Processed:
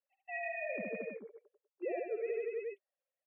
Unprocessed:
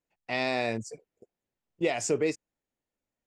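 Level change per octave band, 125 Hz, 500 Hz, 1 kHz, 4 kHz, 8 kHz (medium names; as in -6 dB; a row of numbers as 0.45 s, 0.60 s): under -20 dB, -6.5 dB, -11.0 dB, under -40 dB, under -40 dB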